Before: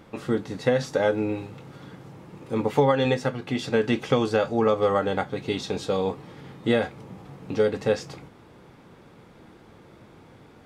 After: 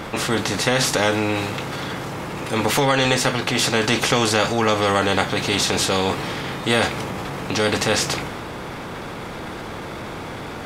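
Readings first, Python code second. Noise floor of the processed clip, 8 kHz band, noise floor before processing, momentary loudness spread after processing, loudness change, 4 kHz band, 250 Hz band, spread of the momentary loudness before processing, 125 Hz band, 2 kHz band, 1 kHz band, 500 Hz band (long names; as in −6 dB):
−32 dBFS, +21.0 dB, −51 dBFS, 14 LU, +5.0 dB, +15.0 dB, +3.5 dB, 22 LU, +5.5 dB, +11.5 dB, +8.0 dB, +1.5 dB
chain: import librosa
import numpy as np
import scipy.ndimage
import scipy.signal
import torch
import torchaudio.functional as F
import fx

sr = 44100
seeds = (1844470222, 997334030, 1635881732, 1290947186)

y = fx.transient(x, sr, attack_db=-3, sustain_db=3)
y = fx.spectral_comp(y, sr, ratio=2.0)
y = y * 10.0 ** (6.5 / 20.0)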